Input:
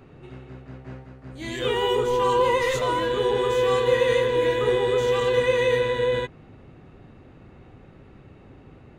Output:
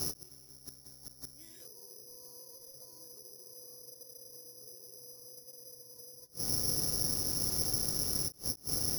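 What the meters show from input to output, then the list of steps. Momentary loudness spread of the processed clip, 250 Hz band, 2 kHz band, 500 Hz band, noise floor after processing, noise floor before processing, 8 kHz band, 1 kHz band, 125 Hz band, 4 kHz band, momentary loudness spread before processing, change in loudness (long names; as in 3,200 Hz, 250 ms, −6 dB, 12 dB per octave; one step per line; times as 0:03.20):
19 LU, −13.5 dB, −30.5 dB, −30.0 dB, −56 dBFS, −49 dBFS, +8.0 dB, −29.0 dB, −11.5 dB, −7.0 dB, 16 LU, −9.0 dB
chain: amplitude modulation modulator 210 Hz, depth 25%
treble cut that deepens with the level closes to 500 Hz, closed at −21.5 dBFS
downward compressor 8 to 1, threshold −40 dBFS, peak gain reduction 19.5 dB
on a send: delay with a low-pass on its return 690 ms, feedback 75%, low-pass 1,400 Hz, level −21.5 dB
on the sum: pitch vibrato 0.46 Hz 5.5 cents
Bessel low-pass filter 2,000 Hz
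bad sample-rate conversion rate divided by 8×, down none, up zero stuff
gate with flip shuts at −20 dBFS, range −26 dB
every ending faded ahead of time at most 410 dB per second
level +7.5 dB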